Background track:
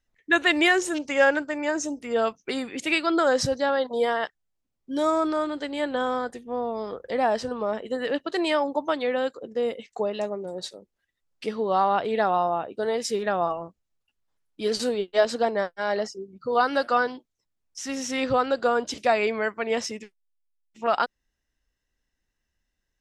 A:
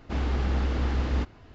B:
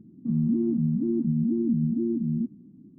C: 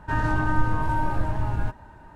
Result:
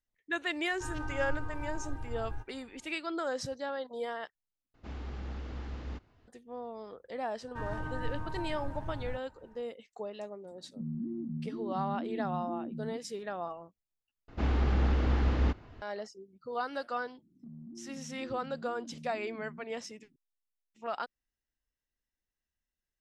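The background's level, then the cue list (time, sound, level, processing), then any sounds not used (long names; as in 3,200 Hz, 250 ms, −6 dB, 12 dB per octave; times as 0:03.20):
background track −13 dB
0:00.72: mix in C −18 dB + comb filter 2.5 ms, depth 84%
0:04.74: overwrite with A −14 dB
0:07.47: mix in C −14.5 dB
0:10.51: mix in B −13 dB
0:14.28: overwrite with A −1 dB + high-shelf EQ 5,000 Hz −8.5 dB
0:17.18: mix in B −16.5 dB + downward compressor, threshold −28 dBFS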